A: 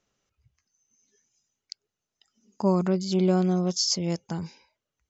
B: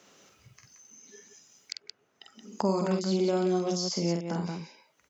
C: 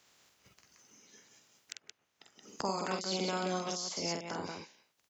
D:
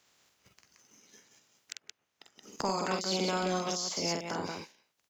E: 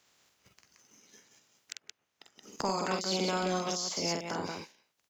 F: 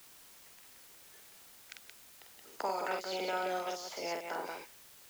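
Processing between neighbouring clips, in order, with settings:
high-pass filter 190 Hz 12 dB per octave; loudspeakers that aren't time-aligned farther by 16 metres −4 dB, 60 metres −7 dB; multiband upward and downward compressor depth 70%; level −3 dB
ceiling on every frequency bin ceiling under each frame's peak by 19 dB; level −7.5 dB
leveller curve on the samples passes 1
no processing that can be heard
three-way crossover with the lows and the highs turned down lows −24 dB, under 380 Hz, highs −14 dB, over 3,000 Hz; notch filter 1,100 Hz, Q 7.2; in parallel at −5 dB: bit-depth reduction 8 bits, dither triangular; on the sum: level −4 dB

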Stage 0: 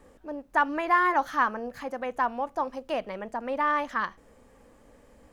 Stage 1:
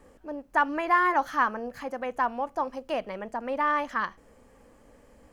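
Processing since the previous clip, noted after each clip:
notch filter 3,700 Hz, Q 15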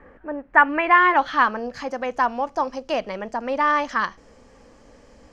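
low-pass filter sweep 1,800 Hz → 5,600 Hz, 0:00.42–0:01.82
level +5.5 dB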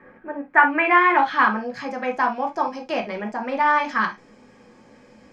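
convolution reverb, pre-delay 3 ms, DRR 1.5 dB
level −3 dB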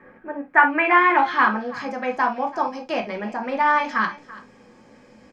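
single-tap delay 334 ms −19 dB

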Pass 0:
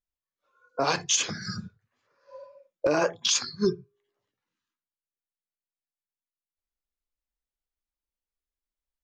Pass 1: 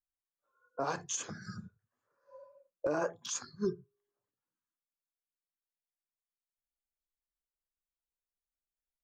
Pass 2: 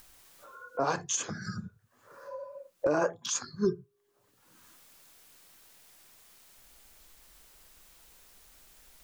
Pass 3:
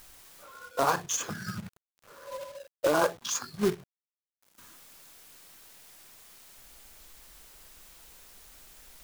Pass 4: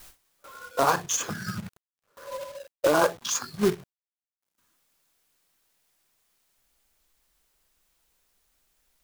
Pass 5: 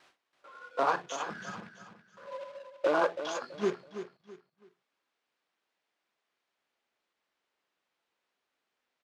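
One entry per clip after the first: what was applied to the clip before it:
flat-topped bell 3,300 Hz −10.5 dB; level −8.5 dB
upward compression, threshold −38 dBFS; level +5.5 dB
dynamic equaliser 1,100 Hz, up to +6 dB, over −46 dBFS, Q 1.2; log-companded quantiser 4 bits
noise gate with hold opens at −43 dBFS; level +3.5 dB
band-pass filter 270–3,100 Hz; on a send: repeating echo 329 ms, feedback 31%, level −10.5 dB; on the sum: level −5 dB

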